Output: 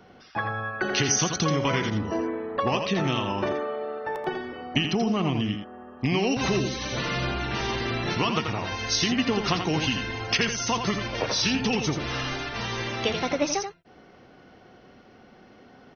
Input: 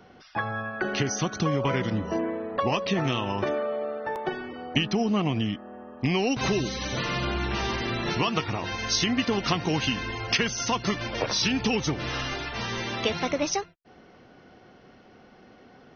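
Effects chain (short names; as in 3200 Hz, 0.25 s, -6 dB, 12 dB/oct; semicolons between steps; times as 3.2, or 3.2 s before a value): 0.81–1.89 high shelf 3300 Hz +11 dB; echo 84 ms -7 dB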